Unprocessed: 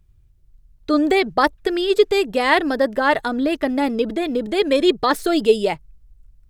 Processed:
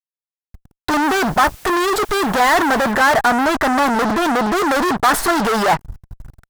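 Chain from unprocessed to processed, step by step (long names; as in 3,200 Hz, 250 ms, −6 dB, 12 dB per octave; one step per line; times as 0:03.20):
fuzz pedal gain 42 dB, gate −43 dBFS
flat-topped bell 1,100 Hz +9 dB
0:01.02–0:02.91: background noise white −38 dBFS
level −5 dB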